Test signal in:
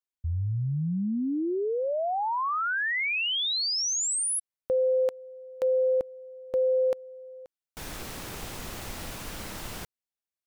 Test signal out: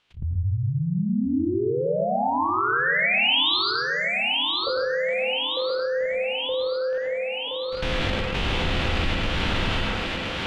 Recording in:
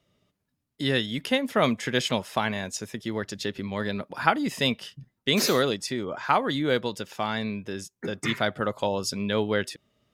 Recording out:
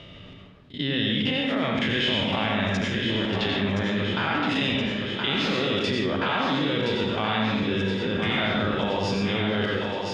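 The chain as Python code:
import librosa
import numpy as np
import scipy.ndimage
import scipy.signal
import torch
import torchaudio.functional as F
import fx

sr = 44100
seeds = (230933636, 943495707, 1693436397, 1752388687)

p1 = fx.spec_blur(x, sr, span_ms=81.0)
p2 = fx.low_shelf(p1, sr, hz=200.0, db=5.5)
p3 = fx.level_steps(p2, sr, step_db=19)
p4 = fx.lowpass_res(p3, sr, hz=3100.0, q=2.5)
p5 = p4 + fx.echo_thinned(p4, sr, ms=1021, feedback_pct=59, hz=160.0, wet_db=-7, dry=0)
p6 = fx.rev_plate(p5, sr, seeds[0], rt60_s=0.82, hf_ratio=0.55, predelay_ms=75, drr_db=-0.5)
p7 = fx.env_flatten(p6, sr, amount_pct=50)
y = p7 * librosa.db_to_amplitude(7.0)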